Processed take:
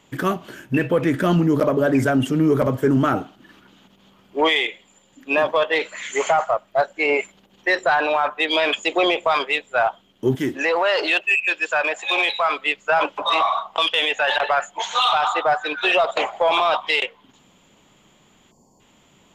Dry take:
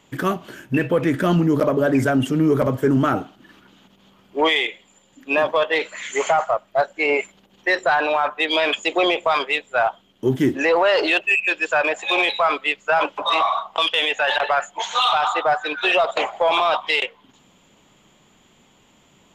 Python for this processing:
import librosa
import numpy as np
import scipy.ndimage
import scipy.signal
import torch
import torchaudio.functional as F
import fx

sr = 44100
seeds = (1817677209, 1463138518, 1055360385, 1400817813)

y = fx.low_shelf(x, sr, hz=490.0, db=-7.5, at=(10.35, 12.58))
y = fx.spec_box(y, sr, start_s=18.51, length_s=0.29, low_hz=1100.0, high_hz=4300.0, gain_db=-27)